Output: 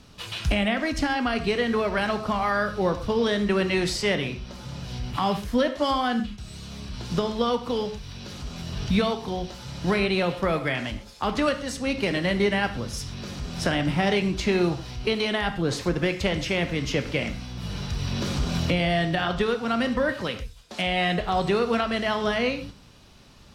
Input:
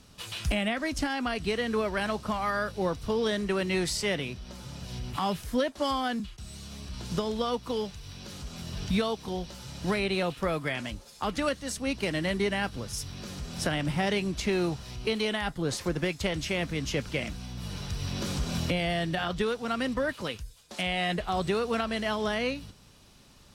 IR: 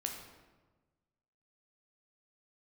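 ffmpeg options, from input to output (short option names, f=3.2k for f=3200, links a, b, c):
-filter_complex "[0:a]asplit=2[a][b];[1:a]atrim=start_sample=2205,atrim=end_sample=6174,lowpass=6.3k[c];[b][c]afir=irnorm=-1:irlink=0,volume=2dB[d];[a][d]amix=inputs=2:normalize=0,volume=-1.5dB"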